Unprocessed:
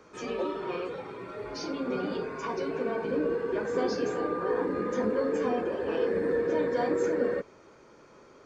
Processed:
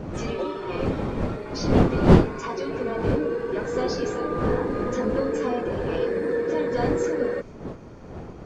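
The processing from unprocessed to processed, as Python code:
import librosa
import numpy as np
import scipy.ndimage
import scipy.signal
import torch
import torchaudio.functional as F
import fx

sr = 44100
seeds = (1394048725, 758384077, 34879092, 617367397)

y = fx.dmg_wind(x, sr, seeds[0], corner_hz=350.0, level_db=-29.0)
y = fx.dynamic_eq(y, sr, hz=6600.0, q=0.71, threshold_db=-56.0, ratio=4.0, max_db=4)
y = F.gain(torch.from_numpy(y), 2.5).numpy()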